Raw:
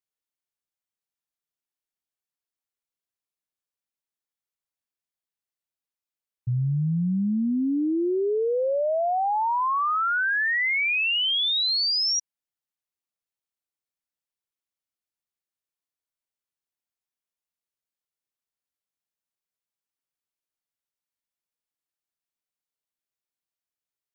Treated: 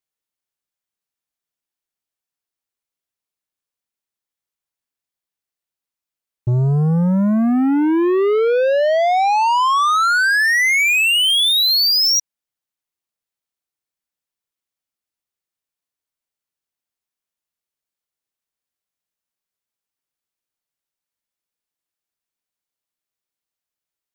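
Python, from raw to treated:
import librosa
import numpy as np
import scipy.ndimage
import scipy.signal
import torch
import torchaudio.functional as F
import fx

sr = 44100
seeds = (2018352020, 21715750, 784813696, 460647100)

y = fx.leveller(x, sr, passes=2)
y = F.gain(torch.from_numpy(y), 7.5).numpy()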